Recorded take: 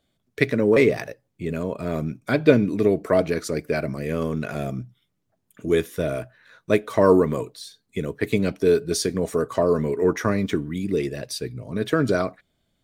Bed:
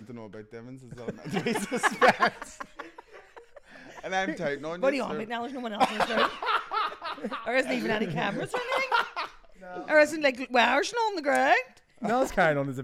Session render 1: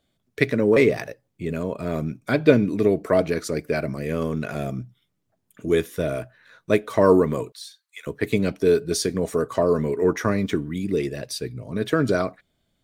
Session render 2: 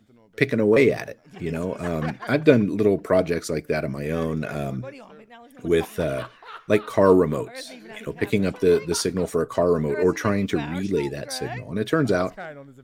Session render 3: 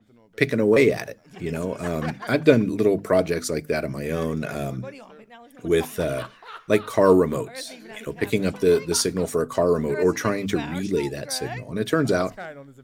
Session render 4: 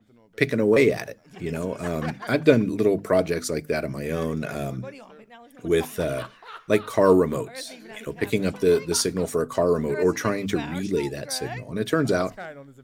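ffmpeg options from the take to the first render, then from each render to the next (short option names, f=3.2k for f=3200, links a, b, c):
-filter_complex "[0:a]asettb=1/sr,asplit=3[a][b][c];[a]atrim=end=7.524[d];[b]atrim=start=7.52:end=8.07,asetpts=PTS-STARTPTS,afade=t=in:d=0.004:c=qsin,afade=t=out:st=0.546:d=0.004:c=qsin,highpass=f=1.1k:w=0.5412,highpass=f=1.1k:w=1.3066[e];[c]atrim=start=8.066[f];[d][e]acrossfade=d=0.004:c1=hsin:c2=qsin[g];[g][f]acrossfade=d=0.004:c1=qsin:c2=hsin"
-filter_complex "[1:a]volume=-13.5dB[a];[0:a][a]amix=inputs=2:normalize=0"
-af "bandreject=f=50:t=h:w=6,bandreject=f=100:t=h:w=6,bandreject=f=150:t=h:w=6,bandreject=f=200:t=h:w=6,bandreject=f=250:t=h:w=6,adynamicequalizer=threshold=0.00631:dfrequency=4300:dqfactor=0.7:tfrequency=4300:tqfactor=0.7:attack=5:release=100:ratio=0.375:range=2.5:mode=boostabove:tftype=highshelf"
-af "volume=-1dB"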